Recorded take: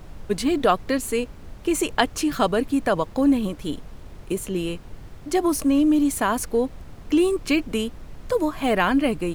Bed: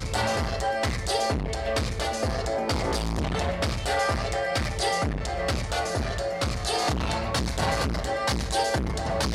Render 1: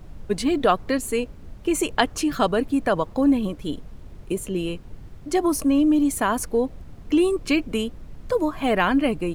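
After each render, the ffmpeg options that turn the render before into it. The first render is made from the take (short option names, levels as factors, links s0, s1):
-af "afftdn=nr=6:nf=-42"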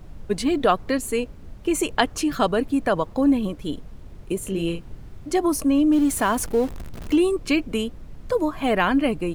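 -filter_complex "[0:a]asettb=1/sr,asplit=3[s0][s1][s2];[s0]atrim=end=4.394[s3];[s1]atrim=start=4.39:end=5.31,asetpts=PTS-STARTPTS,afade=t=in:d=0.004:c=qsin,afade=t=out:st=0.916:d=0.004:c=qsin,asplit=2[s4][s5];[s5]adelay=36,volume=0.531[s6];[s4][s6]amix=inputs=2:normalize=0,atrim=end_sample=40572[s7];[s2]atrim=start=5.306[s8];[s3][s7]acrossfade=d=0.004:c1=hsin:c2=qsin[s9];[s9][s8]acrossfade=d=0.004:c1=qsin:c2=hsin,asettb=1/sr,asplit=3[s10][s11][s12];[s10]atrim=end=5.924[s13];[s11]atrim=start=5.92:end=7.16,asetpts=PTS-STARTPTS,afade=t=in:d=0.004:c=qsin,afade=t=out:st=1.236:d=0.004:c=qsin,aeval=exprs='val(0)+0.5*0.0237*sgn(val(0))':c=same[s14];[s12]atrim=start=7.156[s15];[s13][s14]acrossfade=d=0.004:c1=hsin:c2=qsin[s16];[s16][s15]acrossfade=d=0.004:c1=qsin:c2=hsin"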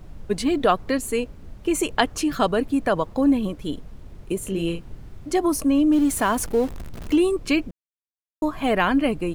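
-filter_complex "[0:a]asplit=3[s0][s1][s2];[s0]atrim=end=7.71,asetpts=PTS-STARTPTS,afade=t=out:st=7.706:d=0.004:c=hsin[s3];[s1]atrim=start=7.71:end=8.42,asetpts=PTS-STARTPTS,volume=0[s4];[s2]atrim=start=8.42,asetpts=PTS-STARTPTS,afade=t=in:d=0.004:c=hsin[s5];[s3][s4][s5]concat=n=3:v=0:a=1"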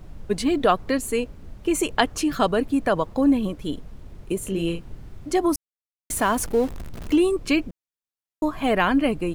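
-filter_complex "[0:a]asplit=3[s0][s1][s2];[s0]atrim=end=5.56,asetpts=PTS-STARTPTS,afade=t=out:st=5.556:d=0.004:c=hsin[s3];[s1]atrim=start=5.56:end=6.1,asetpts=PTS-STARTPTS,volume=0[s4];[s2]atrim=start=6.1,asetpts=PTS-STARTPTS,afade=t=in:d=0.004:c=hsin[s5];[s3][s4][s5]concat=n=3:v=0:a=1"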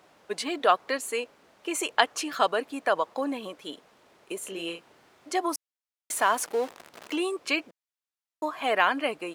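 -af "highpass=620,highshelf=f=10000:g=-8"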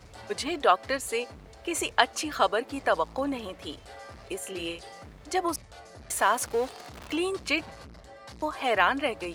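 -filter_complex "[1:a]volume=0.0944[s0];[0:a][s0]amix=inputs=2:normalize=0"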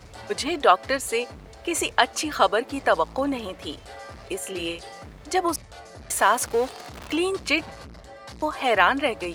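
-af "volume=1.68,alimiter=limit=0.891:level=0:latency=1"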